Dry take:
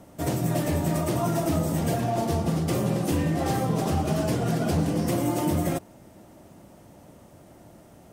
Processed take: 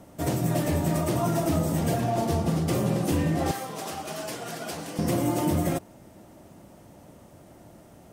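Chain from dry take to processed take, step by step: 3.51–4.99 s: high-pass 1.2 kHz 6 dB/octave

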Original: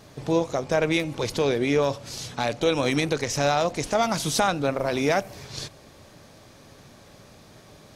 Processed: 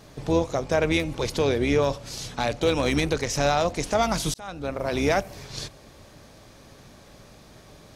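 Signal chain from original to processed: octave divider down 2 oct, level -5 dB; 2.56–3.25 s: hard clipper -14 dBFS, distortion -32 dB; 4.34–5.00 s: fade in

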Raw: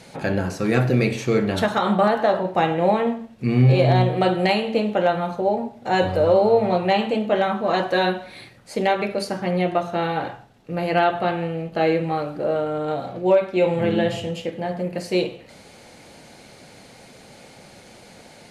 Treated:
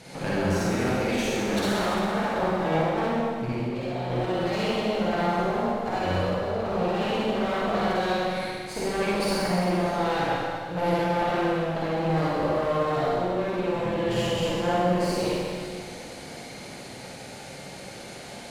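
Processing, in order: 0.69–2.26 s: steep high-pass 180 Hz 36 dB/octave; compressor with a negative ratio -24 dBFS, ratio -1; one-sided clip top -33 dBFS; reverberation RT60 2.0 s, pre-delay 44 ms, DRR -7.5 dB; trim -6 dB

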